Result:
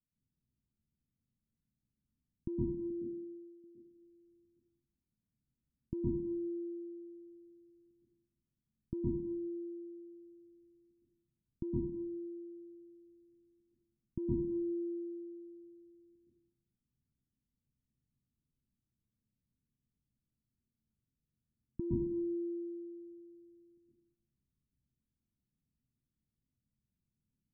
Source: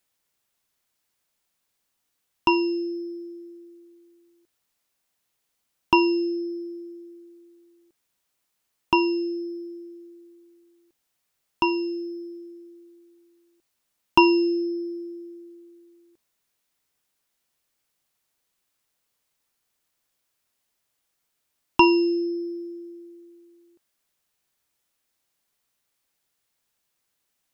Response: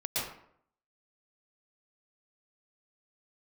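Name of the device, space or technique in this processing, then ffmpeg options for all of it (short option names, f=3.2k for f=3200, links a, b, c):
club heard from the street: -filter_complex "[0:a]asettb=1/sr,asplit=3[a][b][c];[a]atrim=end=2.904[d];[b]atrim=start=2.9:end=3.64,asetpts=PTS-STARTPTS,afade=t=in:d=0.004:c=qsin,afade=t=out:st=0.736:d=0.004:c=qsin,agate=range=-33dB:threshold=-33dB:ratio=3:detection=peak[e];[c]atrim=start=3.636[f];[d][e]acrossfade=d=0.004:c1=hsin:c2=qsin[g];[g][f]acrossfade=d=0.004:c1=qsin:c2=hsin,alimiter=limit=-11.5dB:level=0:latency=1:release=407,lowpass=f=230:w=0.5412,lowpass=f=230:w=1.3066[h];[1:a]atrim=start_sample=2205[i];[h][i]afir=irnorm=-1:irlink=0,volume=2.5dB"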